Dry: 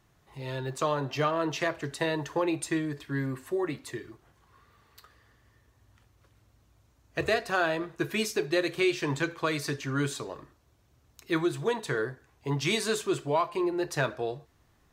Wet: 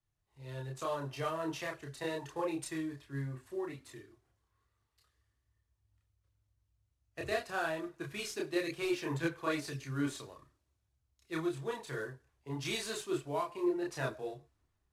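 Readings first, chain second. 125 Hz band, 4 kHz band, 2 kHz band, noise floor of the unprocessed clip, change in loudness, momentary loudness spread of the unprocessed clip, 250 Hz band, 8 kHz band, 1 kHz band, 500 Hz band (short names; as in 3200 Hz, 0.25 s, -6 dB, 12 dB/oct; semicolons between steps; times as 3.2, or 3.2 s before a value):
-7.5 dB, -8.5 dB, -9.0 dB, -66 dBFS, -7.5 dB, 10 LU, -7.0 dB, -7.5 dB, -8.5 dB, -8.0 dB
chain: CVSD 64 kbps; chorus voices 6, 0.9 Hz, delay 30 ms, depth 1.8 ms; three-band expander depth 40%; gain -6 dB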